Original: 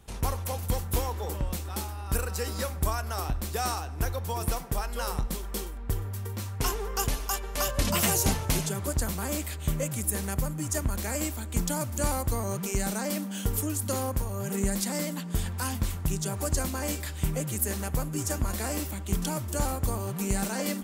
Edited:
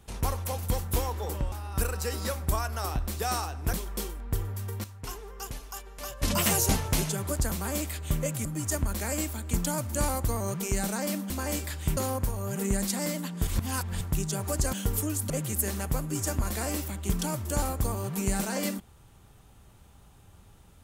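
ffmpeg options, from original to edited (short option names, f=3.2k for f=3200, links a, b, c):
-filter_complex "[0:a]asplit=12[a][b][c][d][e][f][g][h][i][j][k][l];[a]atrim=end=1.522[m];[b]atrim=start=1.858:end=4.072[n];[c]atrim=start=5.298:end=6.412[o];[d]atrim=start=6.408:end=7.802,asetpts=PTS-STARTPTS,volume=-10dB[p];[e]atrim=start=7.798:end=10.022[q];[f]atrim=start=10.478:end=13.332[r];[g]atrim=start=16.658:end=17.332[s];[h]atrim=start=13.898:end=15.402[t];[i]atrim=start=15.398:end=15.942,asetpts=PTS-STARTPTS,areverse[u];[j]atrim=start=15.938:end=16.662[v];[k]atrim=start=13.328:end=13.902[w];[l]atrim=start=17.328[x];[m][n]acrossfade=d=0.004:c1=hsin:c2=hsin[y];[y][o]acrossfade=d=0.004:c1=hsin:c2=hsin[z];[z][p]acrossfade=d=0.004:c1=hsin:c2=hsin[aa];[aa][q]acrossfade=d=0.004:c1=hsin:c2=hsin[ab];[ab][r]acrossfade=d=0.004:c1=hsin:c2=hsin[ac];[ac][s]acrossfade=d=0.004:c1=hsin:c2=hsin[ad];[ad][t]acrossfade=d=0.004:c1=hsin:c2=hsin[ae];[ae][u]acrossfade=d=0.004:c1=hsin:c2=hsin[af];[af][v]acrossfade=d=0.004:c1=hsin:c2=hsin[ag];[ag][w]acrossfade=d=0.004:c1=hsin:c2=hsin[ah];[ah][x]acrossfade=d=0.004:c1=hsin:c2=hsin"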